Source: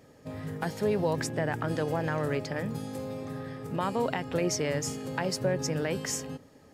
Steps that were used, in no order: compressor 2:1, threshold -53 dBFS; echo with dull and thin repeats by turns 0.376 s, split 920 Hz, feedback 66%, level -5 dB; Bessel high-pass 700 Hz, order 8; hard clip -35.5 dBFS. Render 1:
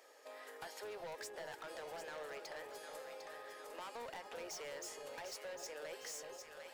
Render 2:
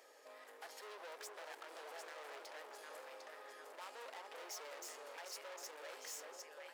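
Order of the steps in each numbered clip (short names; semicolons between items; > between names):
Bessel high-pass > hard clip > echo with dull and thin repeats by turns > compressor; echo with dull and thin repeats by turns > hard clip > compressor > Bessel high-pass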